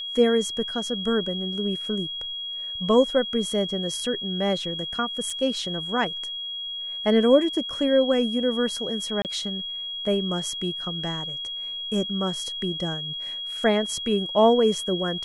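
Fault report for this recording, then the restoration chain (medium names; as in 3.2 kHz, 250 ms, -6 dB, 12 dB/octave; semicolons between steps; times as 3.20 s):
whine 3.3 kHz -30 dBFS
5.30 s: dropout 3.5 ms
9.22–9.25 s: dropout 28 ms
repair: band-stop 3.3 kHz, Q 30; interpolate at 5.30 s, 3.5 ms; interpolate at 9.22 s, 28 ms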